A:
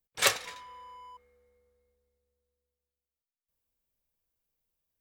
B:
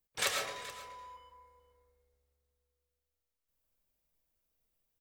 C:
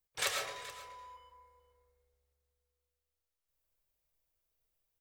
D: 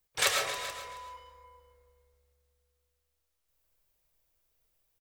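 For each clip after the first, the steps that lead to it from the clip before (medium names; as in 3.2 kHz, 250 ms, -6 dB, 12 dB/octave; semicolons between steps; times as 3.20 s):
compression 2.5:1, threshold -33 dBFS, peak gain reduction 10.5 dB; delay 427 ms -16 dB; on a send at -2 dB: reverberation RT60 0.75 s, pre-delay 70 ms
peaking EQ 230 Hz -11.5 dB 0.52 oct; trim -1.5 dB
delay 271 ms -13.5 dB; trim +7 dB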